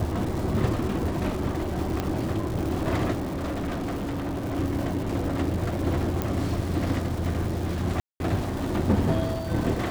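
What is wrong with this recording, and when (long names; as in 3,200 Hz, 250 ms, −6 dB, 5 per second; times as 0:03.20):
surface crackle 540 per second −33 dBFS
0:02.00: click −13 dBFS
0:03.22–0:04.57: clipping −26.5 dBFS
0:06.22: click −12 dBFS
0:08.00–0:08.20: drop-out 201 ms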